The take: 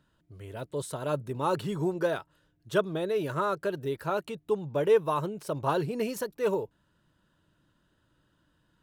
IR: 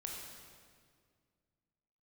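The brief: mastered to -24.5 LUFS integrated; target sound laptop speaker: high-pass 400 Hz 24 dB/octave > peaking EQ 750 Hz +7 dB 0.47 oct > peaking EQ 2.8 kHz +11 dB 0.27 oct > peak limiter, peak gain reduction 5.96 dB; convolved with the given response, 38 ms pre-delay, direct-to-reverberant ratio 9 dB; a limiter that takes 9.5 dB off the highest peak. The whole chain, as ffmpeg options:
-filter_complex "[0:a]alimiter=limit=0.0708:level=0:latency=1,asplit=2[s0][s1];[1:a]atrim=start_sample=2205,adelay=38[s2];[s1][s2]afir=irnorm=-1:irlink=0,volume=0.398[s3];[s0][s3]amix=inputs=2:normalize=0,highpass=f=400:w=0.5412,highpass=f=400:w=1.3066,equalizer=f=750:t=o:w=0.47:g=7,equalizer=f=2800:t=o:w=0.27:g=11,volume=3.55,alimiter=limit=0.224:level=0:latency=1"

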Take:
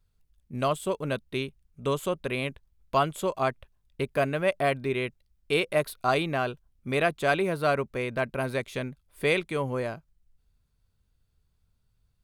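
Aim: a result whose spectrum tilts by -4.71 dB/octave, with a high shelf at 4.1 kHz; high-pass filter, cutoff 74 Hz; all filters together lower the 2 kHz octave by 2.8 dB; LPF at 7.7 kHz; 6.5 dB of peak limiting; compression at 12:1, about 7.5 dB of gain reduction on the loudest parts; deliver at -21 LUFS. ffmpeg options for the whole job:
-af "highpass=74,lowpass=7700,equalizer=f=2000:t=o:g=-4.5,highshelf=f=4100:g=3,acompressor=threshold=0.0447:ratio=12,volume=5.31,alimiter=limit=0.355:level=0:latency=1"

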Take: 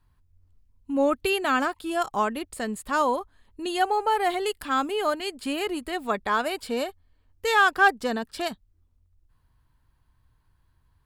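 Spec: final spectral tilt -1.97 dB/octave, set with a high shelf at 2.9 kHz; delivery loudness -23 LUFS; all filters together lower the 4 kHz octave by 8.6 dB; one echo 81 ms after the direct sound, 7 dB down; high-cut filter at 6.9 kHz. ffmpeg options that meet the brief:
-af "lowpass=6900,highshelf=f=2900:g=-4.5,equalizer=f=4000:t=o:g=-8.5,aecho=1:1:81:0.447,volume=1.41"

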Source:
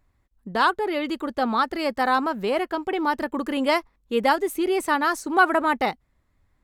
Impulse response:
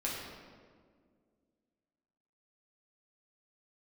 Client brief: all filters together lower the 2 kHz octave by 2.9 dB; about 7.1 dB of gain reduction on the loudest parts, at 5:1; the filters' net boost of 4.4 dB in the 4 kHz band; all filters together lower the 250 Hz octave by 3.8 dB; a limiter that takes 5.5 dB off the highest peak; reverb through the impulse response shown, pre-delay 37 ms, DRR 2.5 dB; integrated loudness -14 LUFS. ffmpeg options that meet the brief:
-filter_complex "[0:a]equalizer=f=250:t=o:g=-5,equalizer=f=2000:t=o:g=-5.5,equalizer=f=4000:t=o:g=7.5,acompressor=threshold=0.0794:ratio=5,alimiter=limit=0.126:level=0:latency=1,asplit=2[s0][s1];[1:a]atrim=start_sample=2205,adelay=37[s2];[s1][s2]afir=irnorm=-1:irlink=0,volume=0.447[s3];[s0][s3]amix=inputs=2:normalize=0,volume=4.47"

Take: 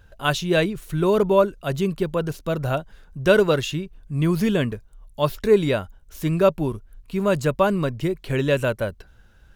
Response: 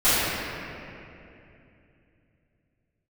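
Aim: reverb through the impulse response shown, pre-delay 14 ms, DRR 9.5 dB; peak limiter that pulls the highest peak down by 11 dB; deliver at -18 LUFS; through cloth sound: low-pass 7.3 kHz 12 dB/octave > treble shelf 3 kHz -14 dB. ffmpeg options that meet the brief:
-filter_complex "[0:a]alimiter=limit=0.178:level=0:latency=1,asplit=2[s0][s1];[1:a]atrim=start_sample=2205,adelay=14[s2];[s1][s2]afir=irnorm=-1:irlink=0,volume=0.0299[s3];[s0][s3]amix=inputs=2:normalize=0,lowpass=7300,highshelf=f=3000:g=-14,volume=2.51"

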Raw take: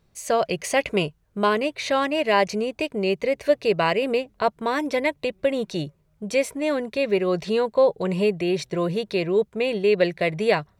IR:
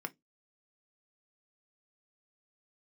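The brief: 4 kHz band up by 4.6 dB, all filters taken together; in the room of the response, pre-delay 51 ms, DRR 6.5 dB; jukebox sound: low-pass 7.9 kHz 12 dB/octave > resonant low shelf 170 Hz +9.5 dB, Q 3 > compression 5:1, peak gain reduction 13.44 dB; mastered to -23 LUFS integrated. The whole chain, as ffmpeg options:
-filter_complex "[0:a]equalizer=f=4000:t=o:g=6.5,asplit=2[s0][s1];[1:a]atrim=start_sample=2205,adelay=51[s2];[s1][s2]afir=irnorm=-1:irlink=0,volume=0.447[s3];[s0][s3]amix=inputs=2:normalize=0,lowpass=7900,lowshelf=f=170:t=q:w=3:g=9.5,acompressor=threshold=0.0398:ratio=5,volume=2.66"

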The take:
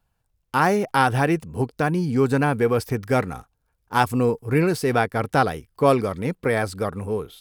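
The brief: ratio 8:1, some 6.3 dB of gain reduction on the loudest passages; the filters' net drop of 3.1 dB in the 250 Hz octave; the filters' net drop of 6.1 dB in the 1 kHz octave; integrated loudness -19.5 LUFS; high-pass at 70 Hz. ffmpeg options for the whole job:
-af "highpass=70,equalizer=f=250:t=o:g=-3.5,equalizer=f=1000:t=o:g=-8.5,acompressor=threshold=0.0708:ratio=8,volume=3.16"

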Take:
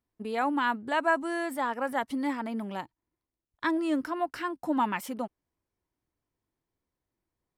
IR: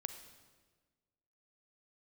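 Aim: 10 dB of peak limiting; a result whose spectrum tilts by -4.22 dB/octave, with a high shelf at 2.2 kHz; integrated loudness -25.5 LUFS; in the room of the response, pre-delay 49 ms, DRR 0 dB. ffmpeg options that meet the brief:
-filter_complex "[0:a]highshelf=f=2200:g=-6.5,alimiter=level_in=1.19:limit=0.0631:level=0:latency=1,volume=0.841,asplit=2[s0][s1];[1:a]atrim=start_sample=2205,adelay=49[s2];[s1][s2]afir=irnorm=-1:irlink=0,volume=1.26[s3];[s0][s3]amix=inputs=2:normalize=0,volume=2.11"

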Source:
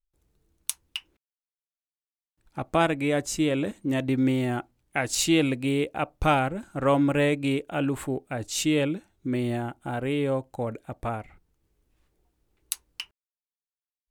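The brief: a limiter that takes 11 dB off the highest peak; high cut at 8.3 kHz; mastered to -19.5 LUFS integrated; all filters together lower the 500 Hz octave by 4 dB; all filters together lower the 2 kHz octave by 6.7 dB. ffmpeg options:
-af "lowpass=8300,equalizer=f=500:t=o:g=-4.5,equalizer=f=2000:t=o:g=-9,volume=3.76,alimiter=limit=0.335:level=0:latency=1"

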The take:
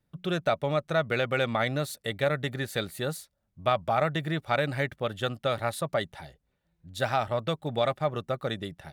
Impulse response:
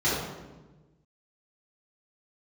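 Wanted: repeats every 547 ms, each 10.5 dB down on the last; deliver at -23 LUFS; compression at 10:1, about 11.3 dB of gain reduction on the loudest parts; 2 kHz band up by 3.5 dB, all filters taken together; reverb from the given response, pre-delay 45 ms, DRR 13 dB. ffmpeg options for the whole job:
-filter_complex "[0:a]equalizer=f=2000:t=o:g=4.5,acompressor=threshold=0.0282:ratio=10,aecho=1:1:547|1094|1641:0.299|0.0896|0.0269,asplit=2[s0][s1];[1:a]atrim=start_sample=2205,adelay=45[s2];[s1][s2]afir=irnorm=-1:irlink=0,volume=0.0447[s3];[s0][s3]amix=inputs=2:normalize=0,volume=4.47"

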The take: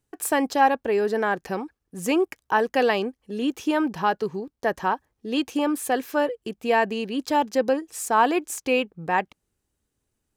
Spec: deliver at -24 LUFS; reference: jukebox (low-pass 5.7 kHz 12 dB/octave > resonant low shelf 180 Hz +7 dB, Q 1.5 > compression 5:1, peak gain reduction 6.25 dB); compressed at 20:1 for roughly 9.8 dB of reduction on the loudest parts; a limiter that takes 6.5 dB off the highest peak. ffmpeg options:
-af "acompressor=threshold=0.0794:ratio=20,alimiter=limit=0.106:level=0:latency=1,lowpass=5700,lowshelf=f=180:t=q:w=1.5:g=7,acompressor=threshold=0.0316:ratio=5,volume=3.76"

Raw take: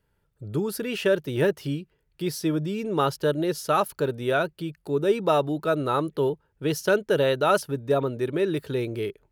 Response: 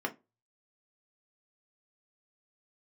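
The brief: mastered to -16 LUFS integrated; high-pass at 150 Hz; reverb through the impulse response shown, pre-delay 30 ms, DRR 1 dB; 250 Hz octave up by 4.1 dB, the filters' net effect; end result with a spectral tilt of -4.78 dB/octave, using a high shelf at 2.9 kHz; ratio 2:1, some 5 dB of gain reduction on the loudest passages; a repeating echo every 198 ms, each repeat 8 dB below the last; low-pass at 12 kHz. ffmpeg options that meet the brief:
-filter_complex "[0:a]highpass=150,lowpass=12000,equalizer=f=250:t=o:g=6.5,highshelf=f=2900:g=8,acompressor=threshold=0.0631:ratio=2,aecho=1:1:198|396|594|792|990:0.398|0.159|0.0637|0.0255|0.0102,asplit=2[s0][s1];[1:a]atrim=start_sample=2205,adelay=30[s2];[s1][s2]afir=irnorm=-1:irlink=0,volume=0.501[s3];[s0][s3]amix=inputs=2:normalize=0,volume=2.24"

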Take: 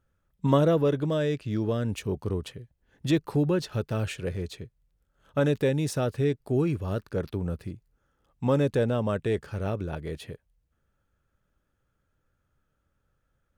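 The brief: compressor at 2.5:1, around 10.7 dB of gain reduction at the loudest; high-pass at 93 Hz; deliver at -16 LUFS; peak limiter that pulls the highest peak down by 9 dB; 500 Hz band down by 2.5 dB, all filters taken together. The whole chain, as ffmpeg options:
-af "highpass=93,equalizer=f=500:t=o:g=-3,acompressor=threshold=0.0178:ratio=2.5,volume=16.8,alimiter=limit=0.596:level=0:latency=1"

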